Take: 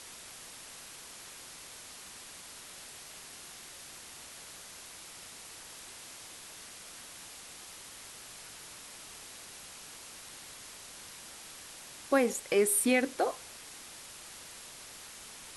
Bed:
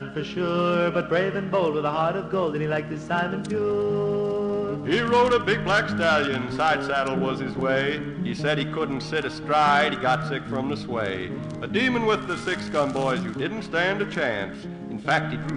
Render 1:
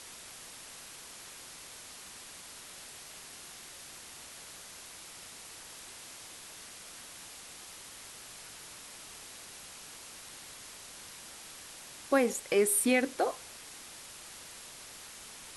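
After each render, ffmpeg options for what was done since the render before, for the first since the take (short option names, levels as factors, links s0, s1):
-af anull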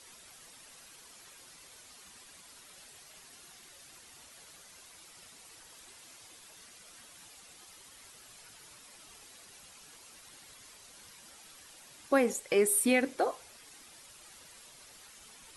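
-af "afftdn=nr=9:nf=-49"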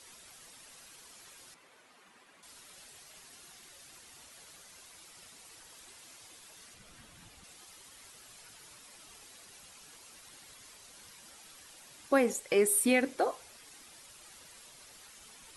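-filter_complex "[0:a]asettb=1/sr,asplit=3[s0][s1][s2];[s0]atrim=end=1.544[s3];[s1]atrim=start=1.54:end=2.43,asetpts=PTS-STARTPTS,afade=t=in:d=0.004:c=qsin,afade=t=out:st=0.886:d=0.004:c=qsin,acrossover=split=160 2700:gain=0.141 1 0.2[s4][s5][s6];[s4][s5][s6]amix=inputs=3:normalize=0[s7];[s2]atrim=start=2.426[s8];[s3][s7]acrossfade=d=0.004:c1=hsin:c2=qsin[s9];[s9][s8]acrossfade=d=0.004:c1=qsin:c2=hsin,asettb=1/sr,asplit=3[s10][s11][s12];[s10]atrim=end=6.744[s13];[s11]atrim=start=6.74:end=7.44,asetpts=PTS-STARTPTS,afade=t=in:d=0.004:c=qsin,afade=t=out:st=0.696:d=0.004:c=qsin,bass=f=250:g=12,treble=f=4000:g=-5[s14];[s12]atrim=start=7.436[s15];[s13][s14]acrossfade=d=0.004:c1=hsin:c2=qsin[s16];[s16][s15]acrossfade=d=0.004:c1=qsin:c2=hsin"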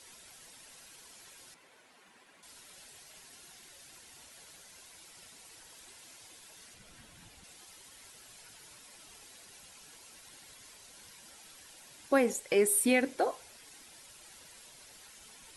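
-af "bandreject=f=1200:w=11"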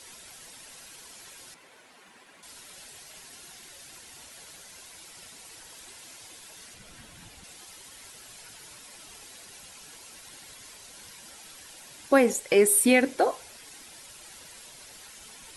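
-af "volume=2.11"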